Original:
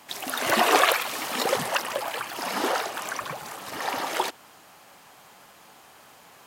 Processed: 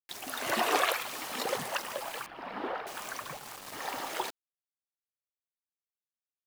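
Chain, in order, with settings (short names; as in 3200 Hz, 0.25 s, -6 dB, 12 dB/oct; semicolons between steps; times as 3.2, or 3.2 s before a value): requantised 6-bit, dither none; 2.26–2.87 air absorption 410 m; gain -8 dB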